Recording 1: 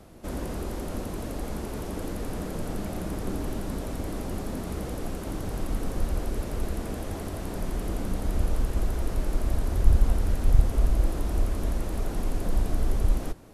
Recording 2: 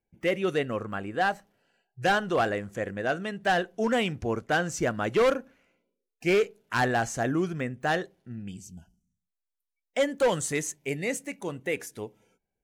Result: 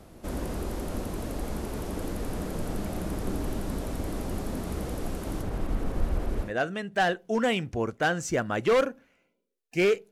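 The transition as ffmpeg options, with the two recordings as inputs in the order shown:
-filter_complex "[0:a]asettb=1/sr,asplit=3[s0][s1][s2];[s0]atrim=end=5.424[s3];[s1]atrim=start=5.42:end=6.53,asetpts=PTS-STARTPTS,afade=t=in:d=0.004:c=qsin,afade=t=out:st=1.106:d=0.004:c=qsin,acrossover=split=3100[s4][s5];[s5]acompressor=threshold=0.002:ratio=4:attack=1:release=60[s6];[s4][s6]amix=inputs=2:normalize=0[s7];[s2]atrim=start=6.526[s8];[s3][s7]acrossfade=d=0.004:c1=hsin:c2=qsin[s9];[s9][s8]acrossfade=d=0.004:c1=qsin:c2=hsin,apad=whole_dur=10.11,atrim=end=10.11,atrim=end=6.53,asetpts=PTS-STARTPTS[s10];[1:a]atrim=start=2.9:end=6.6,asetpts=PTS-STARTPTS[s11];[s10][s11]acrossfade=d=0.12:c1=tri:c2=tri"

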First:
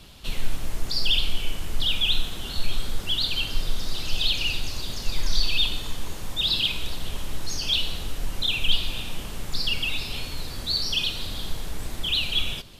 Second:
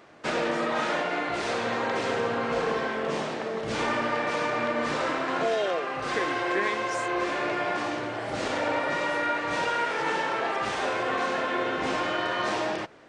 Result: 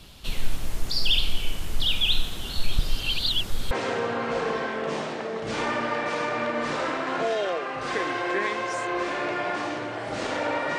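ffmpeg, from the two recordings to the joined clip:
-filter_complex "[0:a]apad=whole_dur=10.78,atrim=end=10.78,asplit=2[s0][s1];[s0]atrim=end=2.792[s2];[s1]atrim=start=2.788:end=3.712,asetpts=PTS-STARTPTS,areverse[s3];[1:a]atrim=start=1.918:end=8.99[s4];[s2][s3]acrossfade=d=0.004:c1=hsin:c2=hsin[s5];[s5][s4]acrossfade=d=0.004:c1=hsin:c2=hsin"

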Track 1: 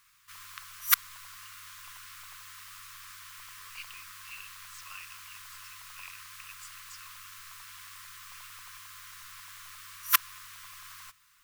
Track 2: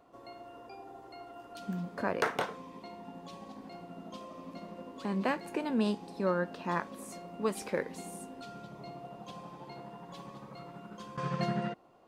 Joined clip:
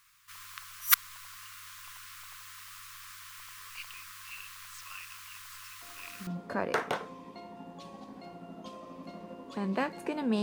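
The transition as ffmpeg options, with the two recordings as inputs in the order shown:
-filter_complex "[1:a]asplit=2[s0][s1];[0:a]apad=whole_dur=10.42,atrim=end=10.42,atrim=end=6.272[s2];[s1]atrim=start=1.748:end=5.9[s3];[s0]atrim=start=1.3:end=1.75,asetpts=PTS-STARTPTS,volume=0.335,afade=t=in:d=0.004:c=hsin,afade=t=out:st=0.446:d=0.004:c=hsin,adelay=5820[s4];[s2][s3]acrossfade=d=0.004:c1=hsin:c2=hsin[s5];[s5][s4]amix=inputs=2:normalize=0"

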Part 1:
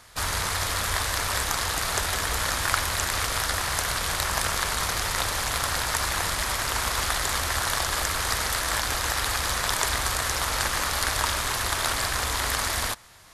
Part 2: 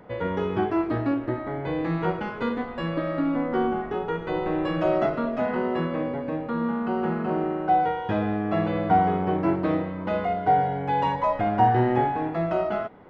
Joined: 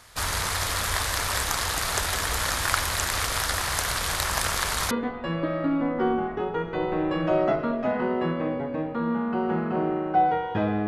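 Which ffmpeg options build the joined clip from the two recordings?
-filter_complex "[0:a]apad=whole_dur=10.87,atrim=end=10.87,atrim=end=4.912[s0];[1:a]atrim=start=2.448:end=8.41[s1];[s0][s1]acrossfade=d=0.004:c1=hsin:c2=hsin"

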